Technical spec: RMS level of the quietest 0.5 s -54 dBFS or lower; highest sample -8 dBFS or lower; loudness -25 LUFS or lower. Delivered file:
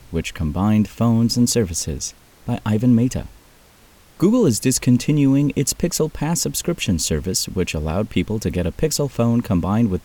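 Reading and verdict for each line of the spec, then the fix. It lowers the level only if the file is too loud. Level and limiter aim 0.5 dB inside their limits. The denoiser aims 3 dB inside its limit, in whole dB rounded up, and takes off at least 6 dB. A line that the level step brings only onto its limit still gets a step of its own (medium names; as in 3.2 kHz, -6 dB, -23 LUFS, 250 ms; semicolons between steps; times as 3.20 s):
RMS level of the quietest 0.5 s -50 dBFS: fail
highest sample -4.5 dBFS: fail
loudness -19.5 LUFS: fail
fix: trim -6 dB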